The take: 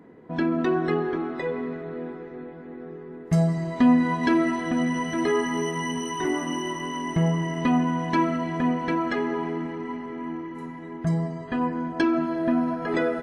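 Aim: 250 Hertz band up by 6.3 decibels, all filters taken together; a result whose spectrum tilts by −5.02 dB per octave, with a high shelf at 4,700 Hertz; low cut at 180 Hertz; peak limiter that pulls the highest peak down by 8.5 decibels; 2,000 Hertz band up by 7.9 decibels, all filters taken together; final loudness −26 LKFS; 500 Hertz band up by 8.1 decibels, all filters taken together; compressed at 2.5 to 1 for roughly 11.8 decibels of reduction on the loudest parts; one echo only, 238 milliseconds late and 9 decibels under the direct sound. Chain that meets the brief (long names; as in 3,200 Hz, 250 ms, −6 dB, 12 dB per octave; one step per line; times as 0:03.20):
high-pass filter 180 Hz
parametric band 250 Hz +6 dB
parametric band 500 Hz +8.5 dB
parametric band 2,000 Hz +7.5 dB
high-shelf EQ 4,700 Hz +6 dB
downward compressor 2.5 to 1, threshold −26 dBFS
brickwall limiter −19 dBFS
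single-tap delay 238 ms −9 dB
level +1.5 dB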